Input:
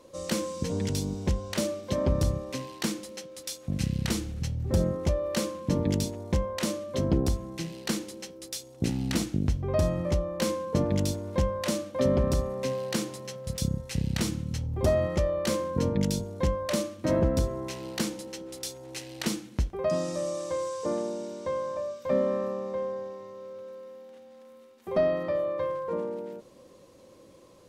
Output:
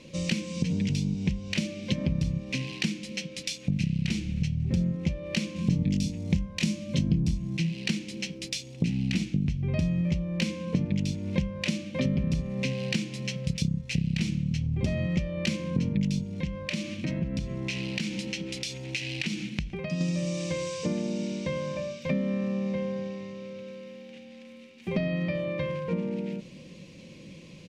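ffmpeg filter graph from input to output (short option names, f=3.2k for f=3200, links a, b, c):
-filter_complex "[0:a]asettb=1/sr,asplit=3[a][b][c];[a]atrim=end=5.564[d];[b]atrim=start=5.56:end=7.57,asetpts=PTS-STARTPTS,afade=t=in:d=0.004:c=qsin,afade=t=out:st=2.006:d=0.004:c=qsin,bass=f=250:g=7,treble=f=4k:g=7,asplit=2[e][f];[f]adelay=24,volume=-6dB[g];[e][g]amix=inputs=2:normalize=0,atrim=end_sample=88641[h];[c]atrim=start=7.566[i];[d][h]acrossfade=d=0.004:c1=hsin:c2=qsin[j];[j][i]acrossfade=d=0.004:c1=qsin:c2=hsin,asettb=1/sr,asplit=3[k][l][m];[k]atrim=end=16.334[n];[l]atrim=start=16.33:end=20.01,asetpts=PTS-STARTPTS,afade=t=in:d=0.004:c=qsin,afade=t=out:st=3.676:d=0.004:c=qsin,equalizer=f=2.4k:w=0.41:g=3,acompressor=threshold=-36dB:ratio=4:attack=3.2:release=140:knee=1:detection=peak[o];[m]atrim=start=20.006[p];[n][o]acrossfade=d=0.004:c1=hsin:c2=qsin[q];[q][p]acrossfade=d=0.004:c1=qsin:c2=hsin,firequalizer=gain_entry='entry(110,0);entry(160,12);entry(260,0);entry(390,-7);entry(660,-10);entry(1200,-13);entry(2400,12);entry(3500,5);entry(5700,4);entry(14000,-13)':delay=0.05:min_phase=1,acompressor=threshold=-34dB:ratio=4,highshelf=f=4.5k:g=-7.5,volume=8dB"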